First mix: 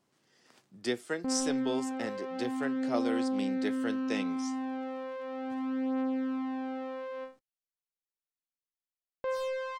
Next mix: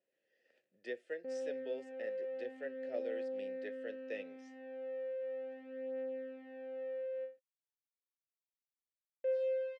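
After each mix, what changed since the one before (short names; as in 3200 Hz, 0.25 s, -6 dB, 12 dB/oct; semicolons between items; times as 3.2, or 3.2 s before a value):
master: add vowel filter e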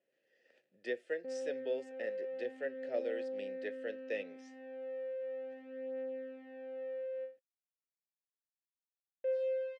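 speech +4.5 dB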